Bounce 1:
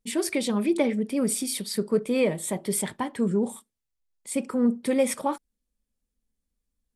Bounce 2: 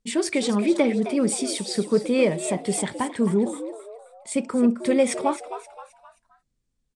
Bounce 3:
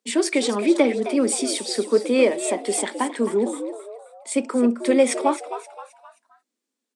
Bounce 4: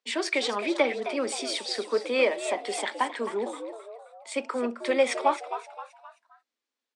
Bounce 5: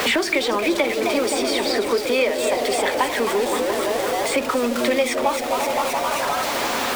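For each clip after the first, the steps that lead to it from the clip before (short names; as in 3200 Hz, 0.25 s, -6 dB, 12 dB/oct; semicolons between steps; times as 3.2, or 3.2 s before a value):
steep low-pass 9000 Hz 36 dB/oct; on a send: frequency-shifting echo 0.263 s, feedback 39%, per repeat +110 Hz, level -12 dB; on the sum: gain +3 dB
steep high-pass 240 Hz 48 dB/oct; gain +3 dB
three-band isolator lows -15 dB, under 560 Hz, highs -17 dB, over 5600 Hz
zero-crossing step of -30.5 dBFS; repeats that get brighter 0.172 s, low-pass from 400 Hz, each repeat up 1 oct, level -6 dB; three-band squash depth 100%; gain +4 dB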